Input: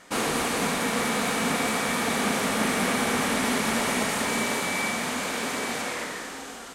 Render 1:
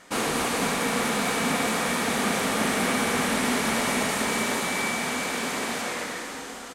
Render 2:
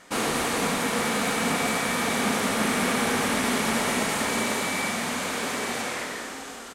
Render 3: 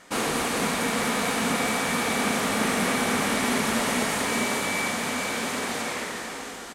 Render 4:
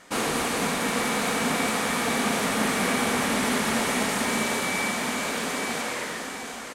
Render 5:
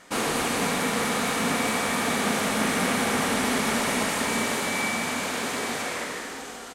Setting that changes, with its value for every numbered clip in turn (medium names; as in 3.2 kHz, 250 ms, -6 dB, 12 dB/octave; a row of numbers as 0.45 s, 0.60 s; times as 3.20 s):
feedback delay, time: 274 ms, 99 ms, 438 ms, 734 ms, 150 ms